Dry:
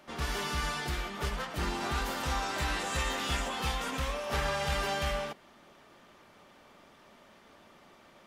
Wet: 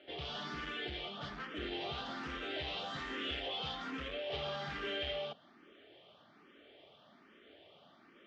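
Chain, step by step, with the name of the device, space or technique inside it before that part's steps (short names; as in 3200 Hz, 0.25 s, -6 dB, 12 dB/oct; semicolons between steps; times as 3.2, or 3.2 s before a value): barber-pole phaser into a guitar amplifier (endless phaser +1.2 Hz; soft clip -33.5 dBFS, distortion -12 dB; speaker cabinet 93–4200 Hz, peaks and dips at 190 Hz -3 dB, 300 Hz +5 dB, 420 Hz +5 dB, 670 Hz +3 dB, 960 Hz -9 dB, 3200 Hz +9 dB); gain -2 dB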